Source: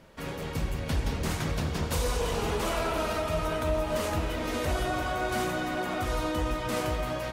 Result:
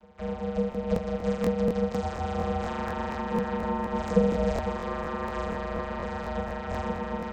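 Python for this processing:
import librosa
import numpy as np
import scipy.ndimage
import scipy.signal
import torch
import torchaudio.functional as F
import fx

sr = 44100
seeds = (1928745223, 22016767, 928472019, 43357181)

y = fx.bass_treble(x, sr, bass_db=13, treble_db=10, at=(4.07, 4.58))
y = fx.vocoder(y, sr, bands=16, carrier='saw', carrier_hz=141.0)
y = y * np.sin(2.0 * np.pi * 340.0 * np.arange(len(y)) / sr)
y = fx.echo_wet_bandpass(y, sr, ms=211, feedback_pct=77, hz=1600.0, wet_db=-14.0)
y = fx.buffer_crackle(y, sr, first_s=0.7, period_s=0.24, block=1024, kind='repeat')
y = y * 10.0 ** (5.5 / 20.0)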